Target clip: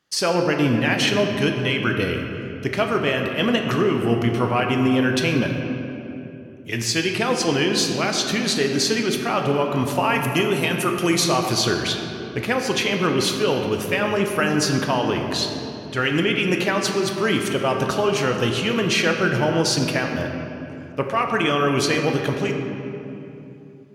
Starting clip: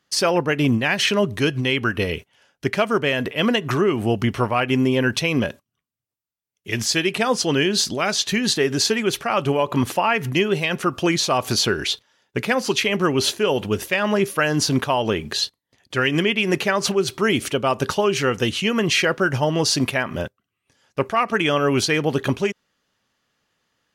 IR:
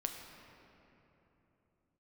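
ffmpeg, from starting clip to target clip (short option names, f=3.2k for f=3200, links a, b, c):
-filter_complex "[0:a]asettb=1/sr,asplit=3[a][b][c];[a]atrim=end=10.034[d];[b]atrim=start=10.03:end=11.24,asetpts=PTS-STARTPTS,afade=t=in:d=0.004:c=qsin,afade=t=out:st=1.206:d=0.004:c=qsin,equalizer=f=11k:w=1:g=14[e];[c]atrim=start=11.236[f];[d][e]acrossfade=d=0.004:c1=hsin:c2=qsin[g];[g][f]acrossfade=d=0.004:c1=qsin:c2=hsin[h];[1:a]atrim=start_sample=2205,asetrate=48510,aresample=44100[i];[h][i]afir=irnorm=-1:irlink=0"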